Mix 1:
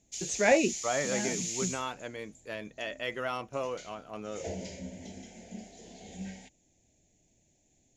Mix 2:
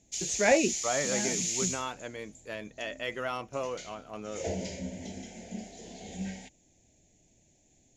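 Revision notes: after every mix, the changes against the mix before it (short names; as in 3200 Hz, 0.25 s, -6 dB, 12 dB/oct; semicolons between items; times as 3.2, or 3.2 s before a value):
background +4.0 dB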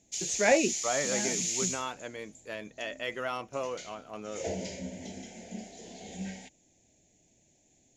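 master: add low shelf 94 Hz -9 dB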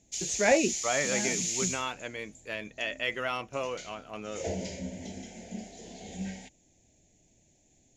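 second voice: add bell 2500 Hz +7 dB 1.1 oct; master: add low shelf 94 Hz +9 dB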